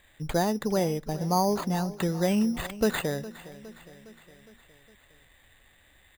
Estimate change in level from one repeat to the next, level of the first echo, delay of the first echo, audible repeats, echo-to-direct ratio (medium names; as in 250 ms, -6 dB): -4.5 dB, -17.5 dB, 411 ms, 4, -16.0 dB